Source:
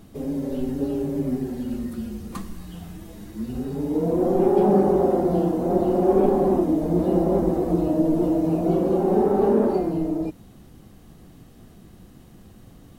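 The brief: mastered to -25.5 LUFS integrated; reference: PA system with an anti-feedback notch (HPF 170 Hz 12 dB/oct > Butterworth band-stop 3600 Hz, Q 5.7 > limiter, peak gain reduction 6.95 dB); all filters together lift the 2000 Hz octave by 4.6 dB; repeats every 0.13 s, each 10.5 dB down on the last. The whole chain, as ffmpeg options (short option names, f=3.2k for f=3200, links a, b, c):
-af "highpass=170,asuperstop=centerf=3600:order=8:qfactor=5.7,equalizer=f=2k:t=o:g=6,aecho=1:1:130|260|390:0.299|0.0896|0.0269,volume=-2dB,alimiter=limit=-15.5dB:level=0:latency=1"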